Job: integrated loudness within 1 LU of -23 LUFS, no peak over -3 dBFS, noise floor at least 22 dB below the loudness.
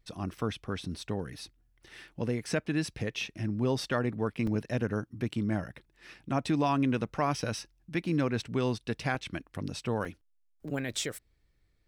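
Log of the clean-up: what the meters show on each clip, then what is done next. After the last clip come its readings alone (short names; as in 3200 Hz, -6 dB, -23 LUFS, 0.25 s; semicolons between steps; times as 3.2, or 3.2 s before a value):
dropouts 4; longest dropout 3.4 ms; loudness -32.5 LUFS; peak -16.5 dBFS; loudness target -23.0 LUFS
-> interpolate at 4.47/9.15/10.05/10.68, 3.4 ms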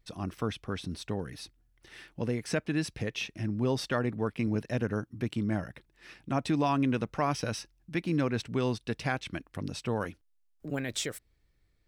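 dropouts 0; loudness -32.5 LUFS; peak -16.5 dBFS; loudness target -23.0 LUFS
-> gain +9.5 dB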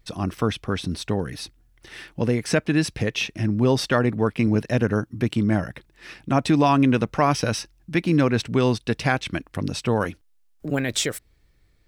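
loudness -23.0 LUFS; peak -7.0 dBFS; noise floor -61 dBFS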